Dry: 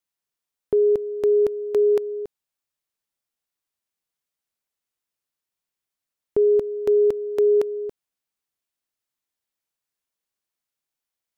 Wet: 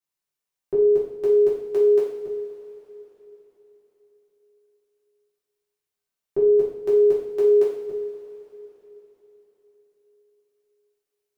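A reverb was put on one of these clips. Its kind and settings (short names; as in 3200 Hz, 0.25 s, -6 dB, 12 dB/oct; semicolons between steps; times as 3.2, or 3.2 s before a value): two-slope reverb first 0.59 s, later 4.1 s, from -17 dB, DRR -8.5 dB; gain -9 dB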